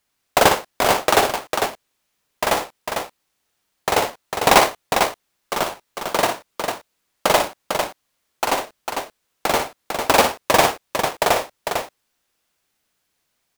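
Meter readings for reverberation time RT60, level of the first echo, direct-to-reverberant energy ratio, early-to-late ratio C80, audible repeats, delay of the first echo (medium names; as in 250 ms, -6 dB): no reverb, -7.5 dB, no reverb, no reverb, 2, 58 ms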